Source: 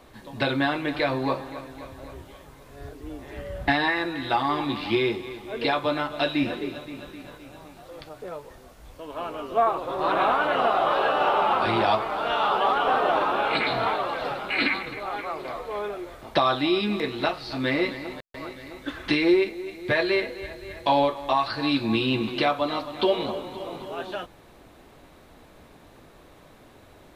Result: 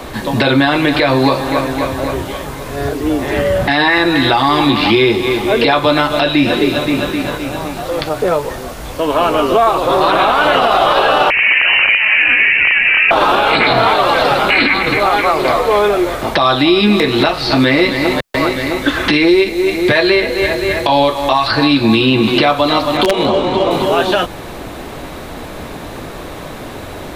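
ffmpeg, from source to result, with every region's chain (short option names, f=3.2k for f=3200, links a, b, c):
-filter_complex "[0:a]asettb=1/sr,asplit=3[a][b][c];[a]atrim=end=11.304[d];[b]atrim=start=11.3:end=13.11,asetpts=PTS-STARTPTS,afade=t=in:d=0.004:c=qsin,afade=t=out:st=1.806:d=0.004:c=qsin,aeval=exprs='(mod(4.22*val(0)+1,2)-1)/4.22':c=same,acrossover=split=80|570|2400[e][f][g][h];[e]acompressor=threshold=-54dB:ratio=3[i];[f]acompressor=threshold=-31dB:ratio=3[j];[g]acompressor=threshold=-34dB:ratio=3[k];[h]acompressor=threshold=-47dB:ratio=3[l];[i][j][k][l]amix=inputs=4:normalize=0,lowpass=f=2.6k:t=q:w=0.5098,lowpass=f=2.6k:t=q:w=0.6013,lowpass=f=2.6k:t=q:w=0.9,lowpass=f=2.6k:t=q:w=2.563,afreqshift=-3100[m];[c]atrim=start=13.106[n];[d][m]acrossfade=d=0.004:c1=hsin:c2=qsin[o];[o][n]acrossfade=d=0.004:c1=qsin:c2=hsin,asettb=1/sr,asplit=3[p][q][r];[p]atrim=end=22.974[s];[q]atrim=start=22.97:end=23.71,asetpts=PTS-STARTPTS,afade=t=in:d=0.004:c=qsin,afade=t=out:st=0.736:d=0.004:c=qsin,aeval=exprs='(mod(4.22*val(0)+1,2)-1)/4.22':c=same,adynamicsmooth=sensitivity=6:basefreq=4.7k[t];[r]atrim=start=23.706[u];[s][t]acrossfade=d=0.004:c1=hsin:c2=qsin[v];[v][u]acrossfade=d=0.004:c1=qsin:c2=hsin,acrossover=split=100|3200[w][x][y];[w]acompressor=threshold=-54dB:ratio=4[z];[x]acompressor=threshold=-33dB:ratio=4[aa];[y]acompressor=threshold=-44dB:ratio=4[ab];[z][aa][ab]amix=inputs=3:normalize=0,alimiter=level_in=24.5dB:limit=-1dB:release=50:level=0:latency=1,volume=-1dB"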